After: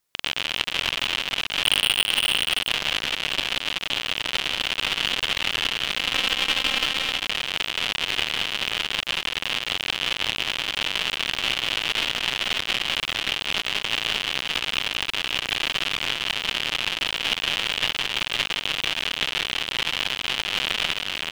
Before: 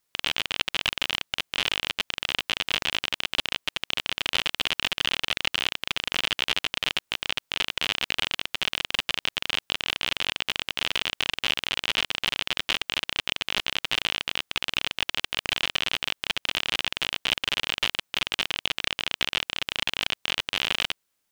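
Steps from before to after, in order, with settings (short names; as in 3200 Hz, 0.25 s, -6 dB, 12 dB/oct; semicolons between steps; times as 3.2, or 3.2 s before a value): 1.63–2.18 sample leveller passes 5; 5.97–6.84 comb 3.8 ms, depth 87%; tapped delay 0.181/0.224/0.523/0.576 s -4/-15.5/-5.5/-5 dB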